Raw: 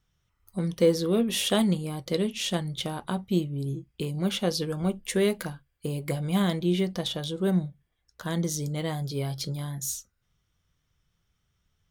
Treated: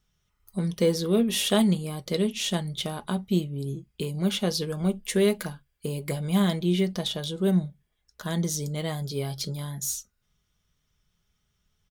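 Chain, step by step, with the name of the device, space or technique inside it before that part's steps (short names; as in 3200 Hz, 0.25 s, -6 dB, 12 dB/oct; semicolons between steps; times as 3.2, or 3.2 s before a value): comb 4.8 ms, depth 34%; exciter from parts (in parallel at -9 dB: HPF 2200 Hz 12 dB/oct + soft clip -31.5 dBFS, distortion -9 dB)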